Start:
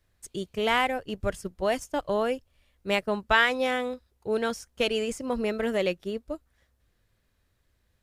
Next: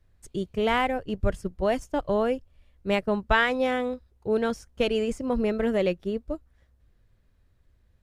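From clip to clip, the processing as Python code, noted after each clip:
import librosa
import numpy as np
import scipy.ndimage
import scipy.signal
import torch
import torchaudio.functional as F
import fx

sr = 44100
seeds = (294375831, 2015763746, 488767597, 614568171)

y = fx.tilt_eq(x, sr, slope=-2.0)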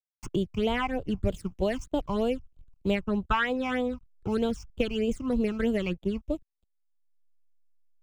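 y = fx.backlash(x, sr, play_db=-45.5)
y = fx.phaser_stages(y, sr, stages=8, low_hz=500.0, high_hz=1800.0, hz=3.2, feedback_pct=30)
y = fx.band_squash(y, sr, depth_pct=70)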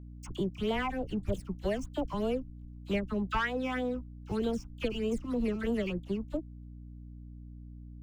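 y = fx.leveller(x, sr, passes=1)
y = fx.dispersion(y, sr, late='lows', ms=46.0, hz=1200.0)
y = fx.add_hum(y, sr, base_hz=60, snr_db=12)
y = y * 10.0 ** (-7.5 / 20.0)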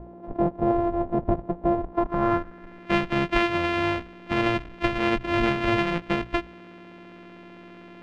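y = np.r_[np.sort(x[:len(x) // 128 * 128].reshape(-1, 128), axis=1).ravel(), x[len(x) // 128 * 128:]]
y = fx.filter_sweep_lowpass(y, sr, from_hz=710.0, to_hz=2600.0, start_s=1.75, end_s=2.97, q=1.7)
y = fx.hum_notches(y, sr, base_hz=60, count=2)
y = y * 10.0 ** (7.5 / 20.0)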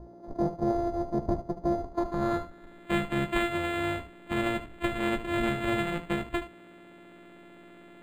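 y = fx.room_early_taps(x, sr, ms=(14, 74), db=(-9.0, -12.0))
y = np.interp(np.arange(len(y)), np.arange(len(y))[::8], y[::8])
y = y * 10.0 ** (-5.0 / 20.0)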